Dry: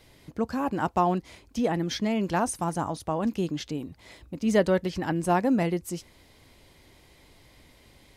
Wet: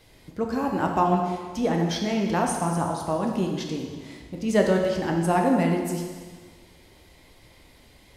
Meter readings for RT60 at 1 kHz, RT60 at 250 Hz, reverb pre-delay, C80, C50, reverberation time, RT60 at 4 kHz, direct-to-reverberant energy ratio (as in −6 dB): 1.6 s, 1.6 s, 5 ms, 5.0 dB, 3.5 dB, 1.6 s, 1.5 s, 1.0 dB